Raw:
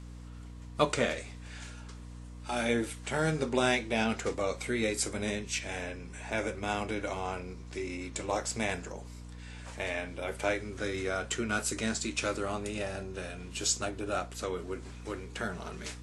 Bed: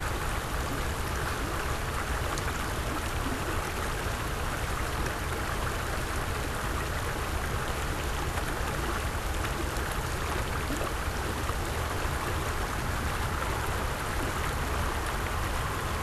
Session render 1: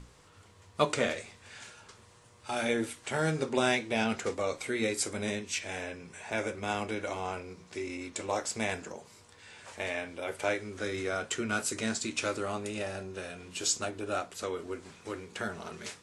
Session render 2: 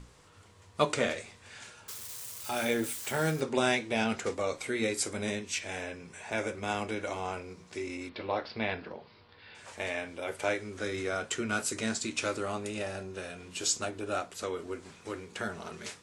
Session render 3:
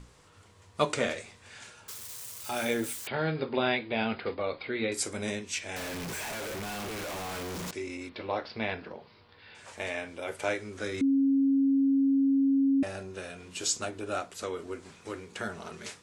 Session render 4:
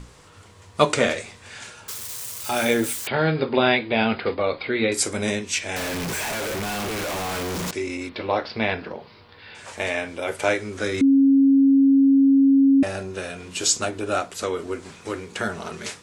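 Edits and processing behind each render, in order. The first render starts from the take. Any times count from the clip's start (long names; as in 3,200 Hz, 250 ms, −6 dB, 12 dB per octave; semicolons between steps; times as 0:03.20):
mains-hum notches 60/120/180/240/300 Hz
0:01.88–0:03.41: spike at every zero crossing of −34 dBFS; 0:08.09–0:09.55: Butterworth low-pass 4,800 Hz 72 dB per octave
0:03.07–0:04.92: Chebyshev low-pass filter 4,900 Hz, order 10; 0:05.76–0:07.71: sign of each sample alone; 0:11.01–0:12.83: beep over 273 Hz −21 dBFS
level +9 dB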